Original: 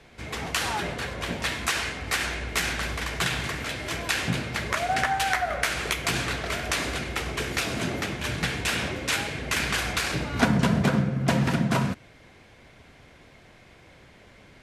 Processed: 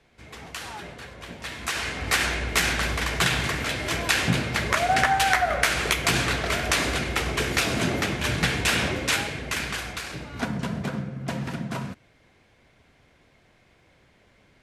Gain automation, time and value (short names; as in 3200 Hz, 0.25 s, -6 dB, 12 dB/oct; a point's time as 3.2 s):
1.37 s -9 dB
2.04 s +4 dB
8.97 s +4 dB
10.06 s -7.5 dB